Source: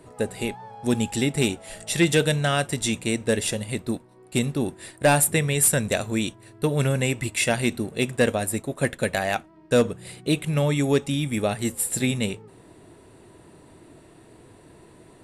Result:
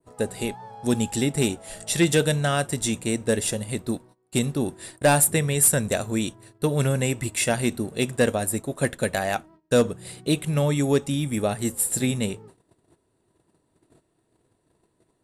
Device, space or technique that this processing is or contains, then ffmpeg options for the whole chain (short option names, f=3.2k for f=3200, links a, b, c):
exciter from parts: -filter_complex "[0:a]agate=range=-20dB:threshold=-46dB:ratio=16:detection=peak,adynamicequalizer=threshold=0.01:dfrequency=4000:dqfactor=0.82:tfrequency=4000:tqfactor=0.82:attack=5:release=100:ratio=0.375:range=2:mode=cutabove:tftype=bell,asplit=2[a][b];[b]highpass=f=2.1k:w=0.5412,highpass=f=2.1k:w=1.3066,asoftclip=type=tanh:threshold=-17dB,volume=-8dB[c];[a][c]amix=inputs=2:normalize=0"